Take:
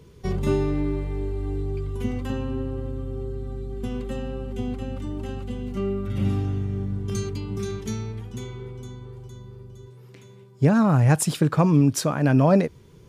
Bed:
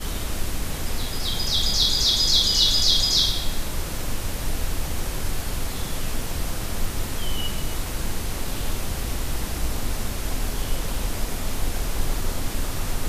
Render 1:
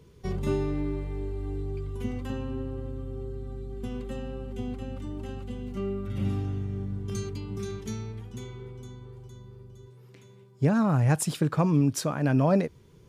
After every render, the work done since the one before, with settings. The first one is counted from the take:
level −5 dB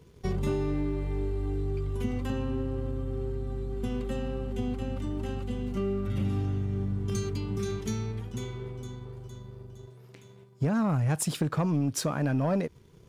leveller curve on the samples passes 1
downward compressor 3 to 1, threshold −26 dBFS, peak gain reduction 7.5 dB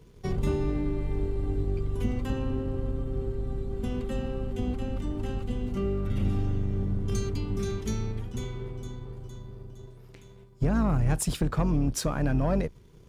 sub-octave generator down 2 octaves, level −1 dB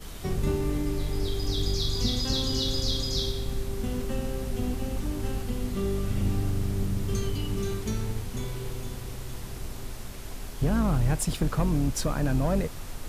mix in bed −12 dB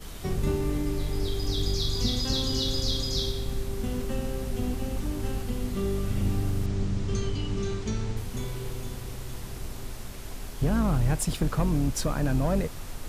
0:06.66–0:08.17: low-pass filter 7,300 Hz 24 dB per octave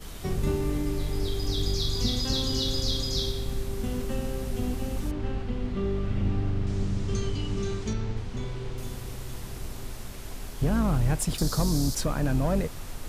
0:05.11–0:06.67: low-pass filter 3,200 Hz
0:07.93–0:08.78: high-frequency loss of the air 100 metres
0:11.38–0:11.95: high shelf with overshoot 3,500 Hz +10 dB, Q 3

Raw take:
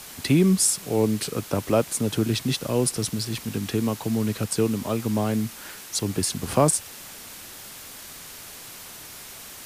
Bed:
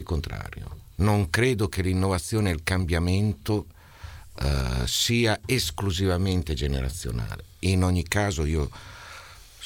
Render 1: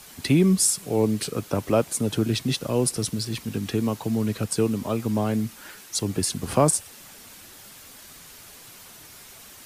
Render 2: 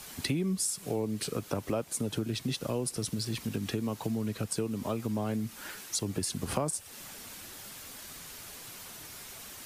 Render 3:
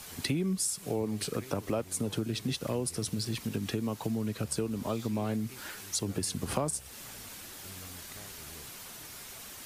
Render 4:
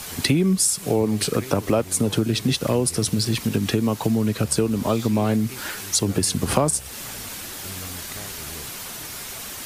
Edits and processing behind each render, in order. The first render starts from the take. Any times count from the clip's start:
broadband denoise 6 dB, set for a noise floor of −42 dBFS
downward compressor 4 to 1, threshold −30 dBFS, peak gain reduction 14 dB
mix in bed −28 dB
level +11.5 dB

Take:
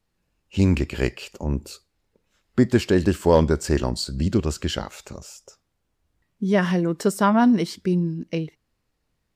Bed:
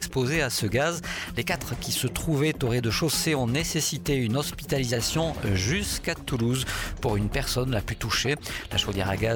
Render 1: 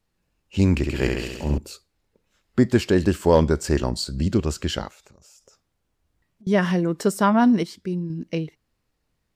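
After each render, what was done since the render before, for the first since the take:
0:00.77–0:01.58: flutter between parallel walls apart 11.6 metres, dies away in 1.1 s
0:04.88–0:06.47: downward compressor 16 to 1, threshold −48 dBFS
0:07.63–0:08.10: clip gain −5.5 dB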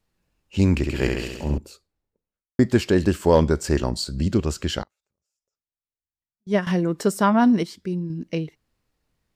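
0:01.23–0:02.59: fade out and dull
0:04.83–0:06.67: expander for the loud parts 2.5 to 1, over −36 dBFS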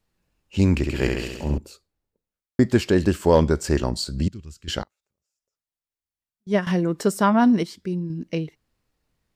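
0:04.28–0:04.68: guitar amp tone stack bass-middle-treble 6-0-2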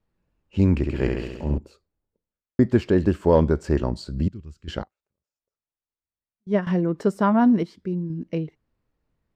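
low-pass filter 1,200 Hz 6 dB per octave
notch filter 760 Hz, Q 25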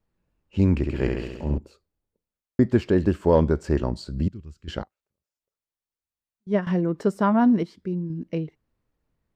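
level −1 dB

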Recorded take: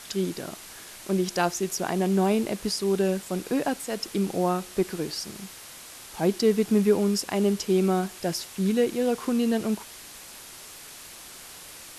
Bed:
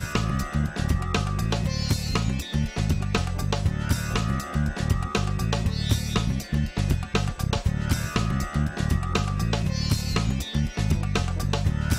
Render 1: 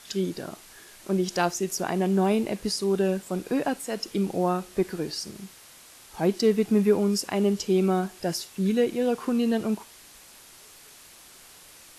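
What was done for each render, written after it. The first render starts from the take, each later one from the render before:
noise reduction from a noise print 6 dB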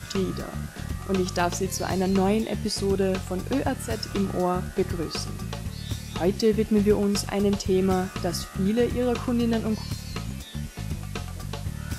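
mix in bed −8.5 dB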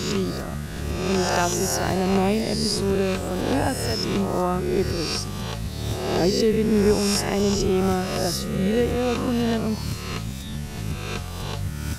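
peak hold with a rise ahead of every peak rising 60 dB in 1.24 s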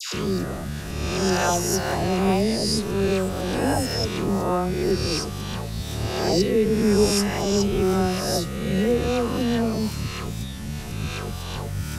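all-pass dispersion lows, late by 139 ms, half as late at 1,100 Hz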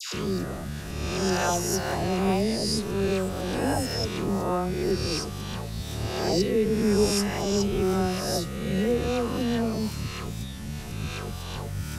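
level −3.5 dB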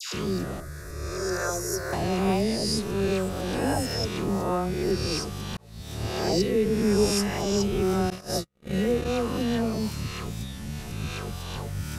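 0:00.60–0:01.93: phaser with its sweep stopped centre 810 Hz, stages 6
0:05.57–0:06.06: fade in
0:08.10–0:09.20: noise gate −28 dBFS, range −48 dB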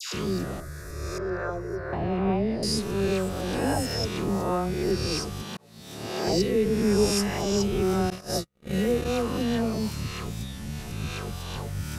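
0:01.18–0:02.63: high-frequency loss of the air 480 metres
0:05.42–0:06.27: Chebyshev high-pass filter 210 Hz
0:08.68–0:09.22: high-shelf EQ 8,900 Hz +5.5 dB

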